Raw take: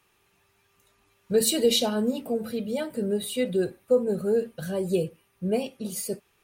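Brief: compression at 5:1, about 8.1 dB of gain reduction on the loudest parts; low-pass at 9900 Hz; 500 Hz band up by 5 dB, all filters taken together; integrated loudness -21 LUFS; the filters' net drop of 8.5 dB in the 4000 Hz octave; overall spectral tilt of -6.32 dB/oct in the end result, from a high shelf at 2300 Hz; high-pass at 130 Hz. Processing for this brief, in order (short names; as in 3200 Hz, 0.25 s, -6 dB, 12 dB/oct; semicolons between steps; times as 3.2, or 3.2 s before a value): HPF 130 Hz; LPF 9900 Hz; bell 500 Hz +6 dB; high shelf 2300 Hz -6 dB; bell 4000 Hz -5 dB; compressor 5:1, threshold -20 dBFS; gain +6.5 dB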